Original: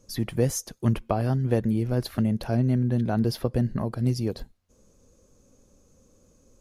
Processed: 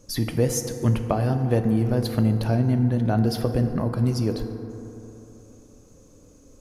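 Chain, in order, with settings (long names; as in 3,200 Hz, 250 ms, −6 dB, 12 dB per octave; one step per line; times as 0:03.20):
in parallel at −0.5 dB: downward compressor, threshold −33 dBFS, peak gain reduction 15 dB
on the sum: feedback delay network reverb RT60 3.3 s, high-frequency decay 0.35×, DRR 6.5 dB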